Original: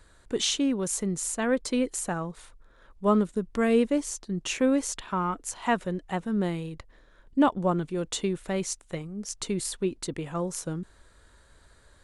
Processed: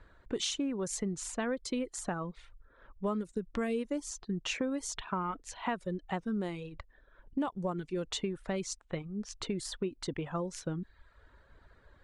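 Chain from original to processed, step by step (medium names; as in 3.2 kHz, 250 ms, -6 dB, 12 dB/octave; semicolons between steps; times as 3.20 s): reverb removal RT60 0.71 s; level-controlled noise filter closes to 2.3 kHz, open at -21 dBFS; compression 5:1, threshold -31 dBFS, peak gain reduction 13 dB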